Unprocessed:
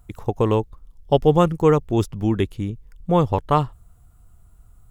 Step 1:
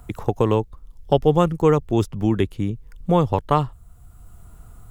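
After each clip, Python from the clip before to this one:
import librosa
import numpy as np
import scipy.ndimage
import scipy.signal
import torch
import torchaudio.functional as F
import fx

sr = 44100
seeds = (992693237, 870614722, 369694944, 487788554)

y = fx.band_squash(x, sr, depth_pct=40)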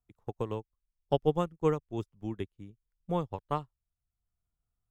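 y = fx.upward_expand(x, sr, threshold_db=-34.0, expansion=2.5)
y = y * librosa.db_to_amplitude(-8.5)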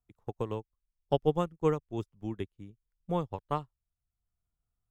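y = x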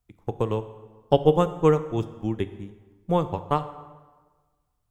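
y = fx.rev_plate(x, sr, seeds[0], rt60_s=1.4, hf_ratio=0.7, predelay_ms=0, drr_db=11.0)
y = y * librosa.db_to_amplitude(8.5)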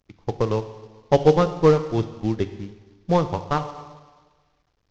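y = fx.cvsd(x, sr, bps=32000)
y = y * librosa.db_to_amplitude(4.0)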